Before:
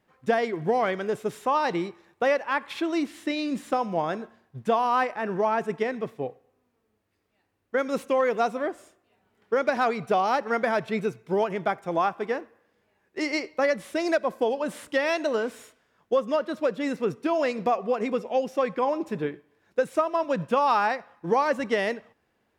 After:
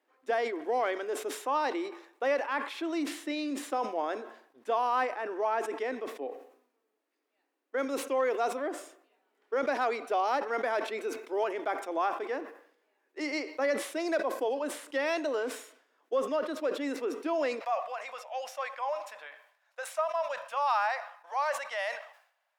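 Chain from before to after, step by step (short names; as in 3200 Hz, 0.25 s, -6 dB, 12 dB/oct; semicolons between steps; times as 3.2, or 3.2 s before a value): elliptic high-pass 270 Hz, stop band 40 dB, from 17.59 s 600 Hz; transient shaper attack -3 dB, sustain +2 dB; sustainer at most 99 dB/s; gain -4.5 dB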